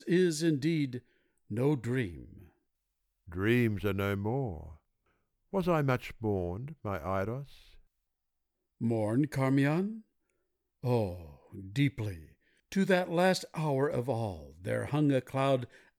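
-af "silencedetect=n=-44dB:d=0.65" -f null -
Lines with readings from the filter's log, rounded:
silence_start: 2.42
silence_end: 3.28 | silence_duration: 0.87
silence_start: 4.72
silence_end: 5.53 | silence_duration: 0.81
silence_start: 7.54
silence_end: 8.81 | silence_duration: 1.27
silence_start: 9.99
silence_end: 10.84 | silence_duration: 0.84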